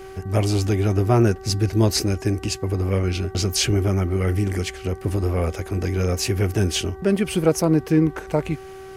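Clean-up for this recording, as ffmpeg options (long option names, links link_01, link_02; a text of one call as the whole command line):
ffmpeg -i in.wav -af "bandreject=frequency=383.2:width_type=h:width=4,bandreject=frequency=766.4:width_type=h:width=4,bandreject=frequency=1149.6:width_type=h:width=4,bandreject=frequency=1532.8:width_type=h:width=4,bandreject=frequency=1916:width_type=h:width=4" out.wav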